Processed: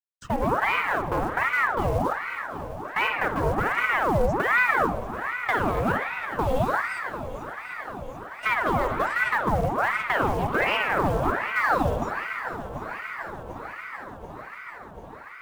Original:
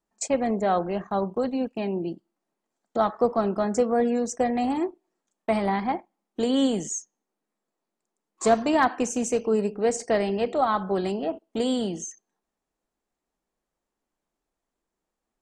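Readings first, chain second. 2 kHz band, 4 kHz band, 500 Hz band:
+13.5 dB, +0.5 dB, -3.0 dB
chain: notch 490 Hz, Q 15; gate -36 dBFS, range -12 dB; LPF 1900 Hz 12 dB/oct; low shelf 120 Hz +7.5 dB; in parallel at 0 dB: limiter -17.5 dBFS, peak gain reduction 9.5 dB; on the sum: compressor 8:1, threshold -18 dBFS, peak gain reduction 8 dB; companded quantiser 6-bit; hard clip -16.5 dBFS, distortion -19 dB; swung echo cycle 0.739 s, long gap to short 1.5:1, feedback 73%, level -13 dB; spring tank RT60 1.3 s, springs 54 ms, chirp 55 ms, DRR 4 dB; ring modulator with a swept carrier 1000 Hz, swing 75%, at 1.3 Hz

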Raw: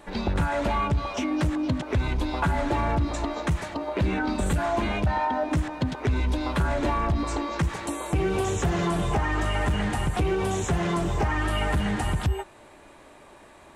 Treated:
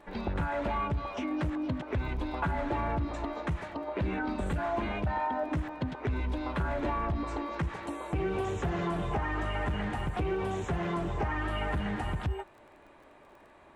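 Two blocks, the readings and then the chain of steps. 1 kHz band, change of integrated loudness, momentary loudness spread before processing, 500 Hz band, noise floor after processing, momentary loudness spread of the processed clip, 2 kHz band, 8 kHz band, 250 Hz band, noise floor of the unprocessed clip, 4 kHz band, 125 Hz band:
-5.5 dB, -6.5 dB, 3 LU, -5.5 dB, -57 dBFS, 4 LU, -6.0 dB, -17.0 dB, -6.5 dB, -50 dBFS, -10.0 dB, -7.5 dB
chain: tone controls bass -2 dB, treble -13 dB; crackle 19/s -44 dBFS; gain -5.5 dB

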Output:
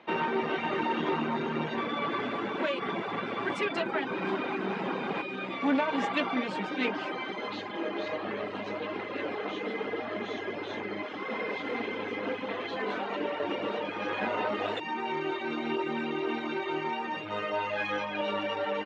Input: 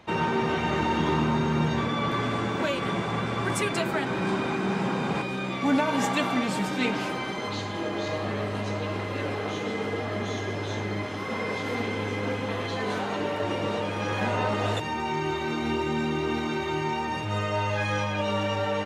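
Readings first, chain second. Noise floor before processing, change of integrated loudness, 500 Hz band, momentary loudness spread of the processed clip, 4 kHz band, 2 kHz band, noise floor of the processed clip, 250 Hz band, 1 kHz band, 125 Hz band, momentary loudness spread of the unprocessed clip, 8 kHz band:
-32 dBFS, -4.5 dB, -3.0 dB, 6 LU, -5.0 dB, -3.0 dB, -38 dBFS, -5.5 dB, -3.5 dB, -15.0 dB, 6 LU, under -15 dB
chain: reverb removal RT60 0.74 s; tube stage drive 18 dB, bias 0.5; Chebyshev band-pass 280–3000 Hz, order 2; gain +1.5 dB

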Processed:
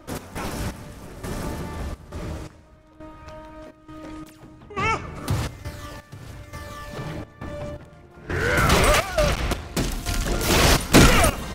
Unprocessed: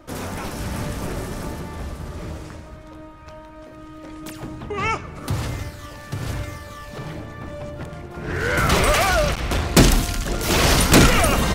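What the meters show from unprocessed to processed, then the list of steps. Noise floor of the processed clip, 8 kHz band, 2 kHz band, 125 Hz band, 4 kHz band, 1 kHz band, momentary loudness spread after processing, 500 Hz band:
-50 dBFS, -2.5 dB, -1.5 dB, -2.5 dB, -2.0 dB, -1.5 dB, 23 LU, -1.5 dB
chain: step gate "x.xx...xxx" 85 bpm -12 dB

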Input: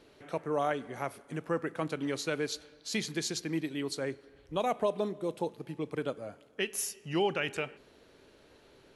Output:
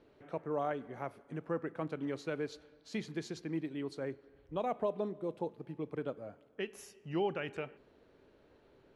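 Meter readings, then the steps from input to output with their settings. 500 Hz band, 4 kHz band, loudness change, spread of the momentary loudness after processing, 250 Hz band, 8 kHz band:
-4.0 dB, -13.0 dB, -5.0 dB, 9 LU, -3.5 dB, -18.5 dB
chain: LPF 1300 Hz 6 dB/oct; gain -3.5 dB

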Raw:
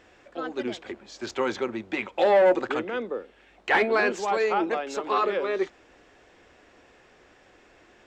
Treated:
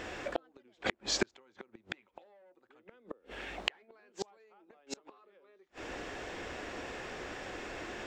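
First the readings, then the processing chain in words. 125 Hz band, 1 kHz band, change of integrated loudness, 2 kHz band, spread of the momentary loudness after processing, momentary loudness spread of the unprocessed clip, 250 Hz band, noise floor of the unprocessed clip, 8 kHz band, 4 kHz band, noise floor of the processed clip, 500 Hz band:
n/a, -18.0 dB, -14.5 dB, -12.0 dB, 21 LU, 16 LU, -13.0 dB, -57 dBFS, +2.0 dB, -1.5 dB, -72 dBFS, -18.5 dB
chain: compressor 16:1, threshold -32 dBFS, peak gain reduction 17.5 dB; flipped gate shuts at -30 dBFS, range -40 dB; gain +13.5 dB

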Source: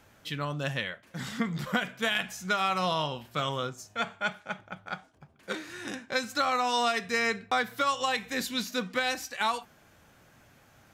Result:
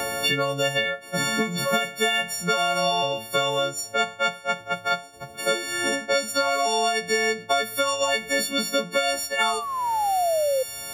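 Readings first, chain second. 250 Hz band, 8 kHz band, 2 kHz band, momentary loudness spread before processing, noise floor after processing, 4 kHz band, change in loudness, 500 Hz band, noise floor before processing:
+3.0 dB, +12.0 dB, +5.5 dB, 12 LU, -43 dBFS, +8.5 dB, +7.0 dB, +10.5 dB, -60 dBFS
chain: frequency quantiser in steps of 4 st; painted sound fall, 9.39–10.63, 510–1400 Hz -34 dBFS; band shelf 540 Hz +8.5 dB 1.1 oct; three-band squash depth 100%

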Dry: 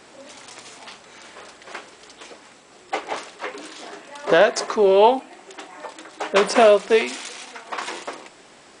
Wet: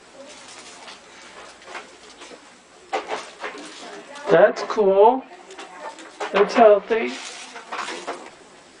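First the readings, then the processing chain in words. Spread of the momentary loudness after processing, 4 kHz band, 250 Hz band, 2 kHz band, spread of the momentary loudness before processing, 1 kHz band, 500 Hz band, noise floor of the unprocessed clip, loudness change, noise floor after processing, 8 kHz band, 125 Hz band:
23 LU, -4.5 dB, +1.0 dB, -2.0 dB, 23 LU, +0.5 dB, 0.0 dB, -49 dBFS, 0.0 dB, -48 dBFS, n/a, +3.0 dB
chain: treble ducked by the level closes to 1700 Hz, closed at -12 dBFS; chorus voices 6, 1 Hz, delay 14 ms, depth 3 ms; gain +3.5 dB

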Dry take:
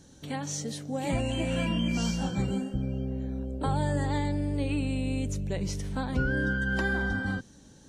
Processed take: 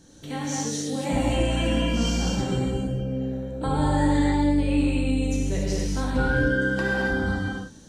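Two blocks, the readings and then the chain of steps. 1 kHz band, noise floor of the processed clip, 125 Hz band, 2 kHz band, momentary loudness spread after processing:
+6.0 dB, -46 dBFS, +3.5 dB, +4.5 dB, 7 LU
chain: non-linear reverb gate 0.31 s flat, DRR -4.5 dB

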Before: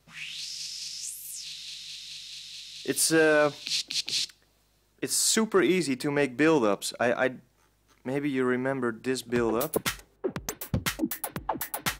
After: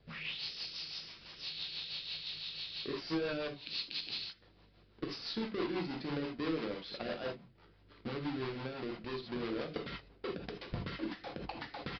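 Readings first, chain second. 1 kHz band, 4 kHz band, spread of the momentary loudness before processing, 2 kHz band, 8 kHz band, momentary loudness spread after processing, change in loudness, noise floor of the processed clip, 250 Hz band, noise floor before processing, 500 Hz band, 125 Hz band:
-12.5 dB, -7.5 dB, 15 LU, -14.0 dB, under -30 dB, 7 LU, -12.5 dB, -64 dBFS, -11.0 dB, -67 dBFS, -13.5 dB, -8.5 dB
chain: half-waves squared off; compressor 5:1, threshold -36 dBFS, peak gain reduction 17.5 dB; non-linear reverb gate 0.1 s flat, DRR 1.5 dB; rotary speaker horn 6 Hz; downsampling 11025 Hz; gain -2 dB

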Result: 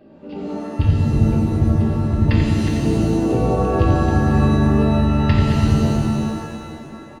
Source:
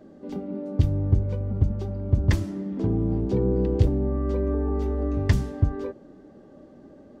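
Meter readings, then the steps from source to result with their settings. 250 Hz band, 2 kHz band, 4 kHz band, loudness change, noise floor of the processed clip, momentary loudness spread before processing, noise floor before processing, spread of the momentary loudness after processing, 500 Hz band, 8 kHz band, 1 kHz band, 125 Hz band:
+10.0 dB, +12.0 dB, +12.5 dB, +8.0 dB, -39 dBFS, 9 LU, -50 dBFS, 14 LU, +6.0 dB, n/a, +16.5 dB, +7.5 dB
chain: reverse delay 0.208 s, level -7 dB; bell 2700 Hz +14 dB 0.23 oct; on a send: echo 88 ms -7.5 dB; on the sum: downsampling 11025 Hz; shimmer reverb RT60 1.9 s, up +7 st, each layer -2 dB, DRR -0.5 dB

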